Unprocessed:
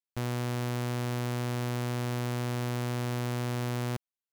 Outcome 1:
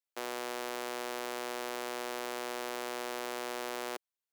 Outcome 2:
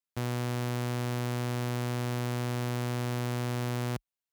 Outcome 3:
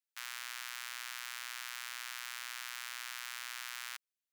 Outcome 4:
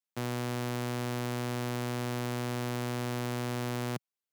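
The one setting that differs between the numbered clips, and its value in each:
high-pass, cutoff frequency: 370 Hz, 41 Hz, 1.4 kHz, 130 Hz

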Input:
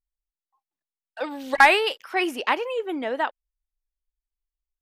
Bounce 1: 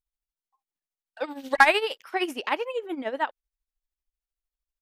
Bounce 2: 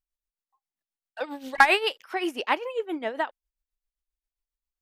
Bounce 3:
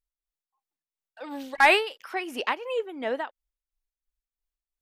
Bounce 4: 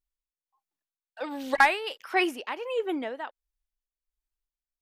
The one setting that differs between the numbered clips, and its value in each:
tremolo, rate: 13 Hz, 7.5 Hz, 2.9 Hz, 1.4 Hz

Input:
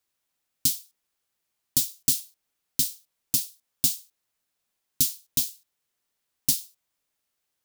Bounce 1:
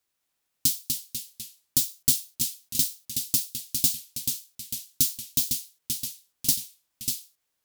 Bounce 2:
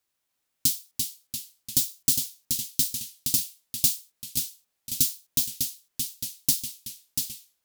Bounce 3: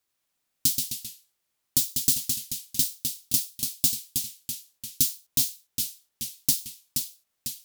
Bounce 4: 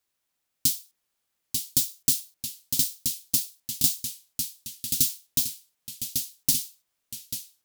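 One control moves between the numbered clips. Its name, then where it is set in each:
ever faster or slower copies, time: 207 ms, 303 ms, 90 ms, 853 ms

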